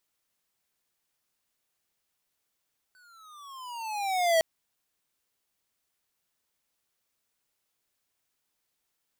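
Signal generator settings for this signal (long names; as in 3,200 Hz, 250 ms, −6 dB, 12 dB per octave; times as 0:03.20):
pitch glide with a swell square, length 1.46 s, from 1,520 Hz, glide −15 semitones, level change +38 dB, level −21 dB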